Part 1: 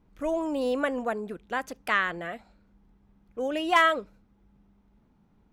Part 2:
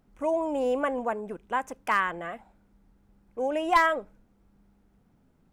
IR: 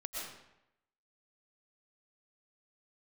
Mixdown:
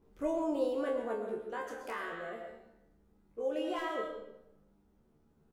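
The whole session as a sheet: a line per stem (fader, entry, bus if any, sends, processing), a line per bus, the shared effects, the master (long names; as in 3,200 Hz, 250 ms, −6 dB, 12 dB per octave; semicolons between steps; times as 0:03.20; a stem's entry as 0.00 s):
+2.5 dB, 0.00 s, send −7.5 dB, parametric band 410 Hz +12.5 dB 0.67 octaves; mains-hum notches 60/120/180/240/300 Hz; brickwall limiter −18 dBFS, peak gain reduction 9 dB; automatic ducking −12 dB, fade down 1.55 s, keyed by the second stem
+2.0 dB, 25 ms, no send, downward compressor 2 to 1, threshold −44 dBFS, peak gain reduction 14.5 dB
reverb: on, RT60 0.85 s, pre-delay 80 ms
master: parametric band 2,200 Hz −3.5 dB 1 octave; tuned comb filter 75 Hz, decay 0.35 s, harmonics all, mix 90%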